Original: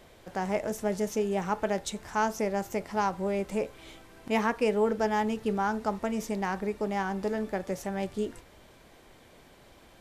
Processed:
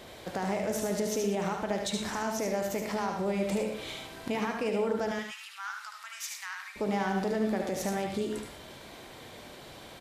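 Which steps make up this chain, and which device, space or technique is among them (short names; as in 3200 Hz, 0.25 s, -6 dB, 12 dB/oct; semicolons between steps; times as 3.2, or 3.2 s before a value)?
broadcast voice chain (HPF 88 Hz 6 dB/oct; de-esser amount 60%; compressor, threshold -32 dBFS, peak gain reduction 10.5 dB; bell 3900 Hz +4.5 dB 0.57 oct; limiter -30 dBFS, peak gain reduction 9 dB); 5.11–6.76 steep high-pass 1200 Hz 36 dB/oct; echo 74 ms -5 dB; non-linear reverb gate 0.14 s rising, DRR 7 dB; gain +6.5 dB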